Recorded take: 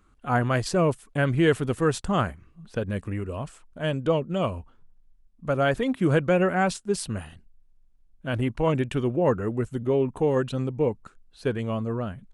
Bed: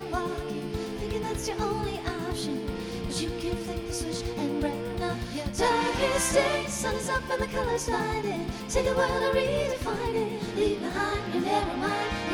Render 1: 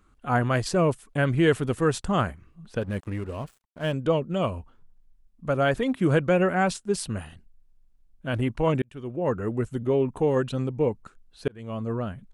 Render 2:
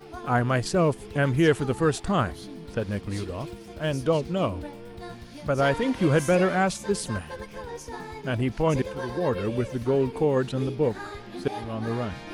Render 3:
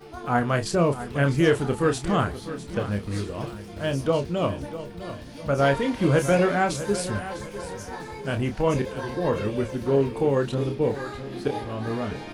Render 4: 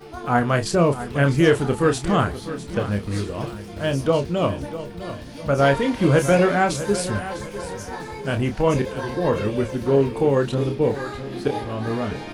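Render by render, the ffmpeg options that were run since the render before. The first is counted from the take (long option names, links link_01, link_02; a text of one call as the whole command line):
ffmpeg -i in.wav -filter_complex "[0:a]asettb=1/sr,asplit=3[link_01][link_02][link_03];[link_01]atrim=end=2.814[link_04];[link_02]atrim=start=2.81:end=3.93,asetpts=PTS-STARTPTS,afade=type=in:duration=0.004:curve=qsin,afade=type=out:start_time=1.116:duration=0.004:curve=qsin,aeval=exprs='sgn(val(0))*max(abs(val(0))-0.00447,0)':channel_layout=same[link_05];[link_03]atrim=start=3.926[link_06];[link_04][link_05]acrossfade=duration=0.004:curve1=hsin:curve2=qsin[link_07];[link_07][link_06]acrossfade=duration=0.004:curve1=qsin:curve2=hsin,asplit=3[link_08][link_09][link_10];[link_08]atrim=end=8.82,asetpts=PTS-STARTPTS,afade=type=out:start_time=8.816:duration=0.004:curve=hsin[link_11];[link_09]atrim=start=8.82:end=11.48,asetpts=PTS-STARTPTS,afade=type=in:duration=0.7,afade=type=out:start_time=2.656:duration=0.004:curve=hsin[link_12];[link_10]atrim=start=11.48,asetpts=PTS-STARTPTS,afade=type=in:duration=0.43[link_13];[link_11][link_12][link_13]concat=n=3:v=0:a=1" out.wav
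ffmpeg -i in.wav -i bed.wav -filter_complex "[1:a]volume=-9.5dB[link_01];[0:a][link_01]amix=inputs=2:normalize=0" out.wav
ffmpeg -i in.wav -filter_complex "[0:a]asplit=2[link_01][link_02];[link_02]adelay=29,volume=-7dB[link_03];[link_01][link_03]amix=inputs=2:normalize=0,aecho=1:1:652|1304|1956|2608:0.224|0.0895|0.0358|0.0143" out.wav
ffmpeg -i in.wav -af "volume=3.5dB" out.wav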